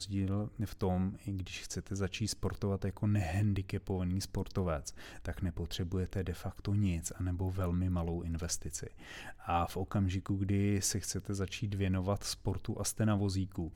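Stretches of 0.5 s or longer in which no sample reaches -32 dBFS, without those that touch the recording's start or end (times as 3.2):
8.83–9.49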